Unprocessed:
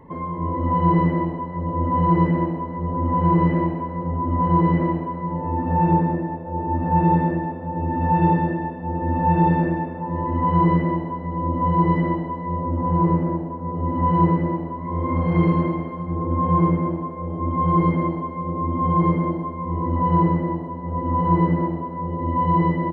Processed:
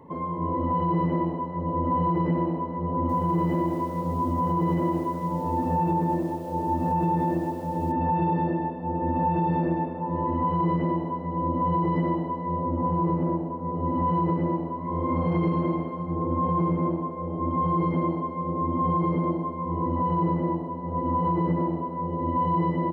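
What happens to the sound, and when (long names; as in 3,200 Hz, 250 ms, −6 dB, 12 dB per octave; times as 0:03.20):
0:02.93–0:07.92: feedback echo at a low word length 161 ms, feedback 55%, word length 7 bits, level −14 dB
whole clip: high-pass filter 160 Hz 6 dB per octave; parametric band 1,800 Hz −8 dB 0.74 octaves; brickwall limiter −16.5 dBFS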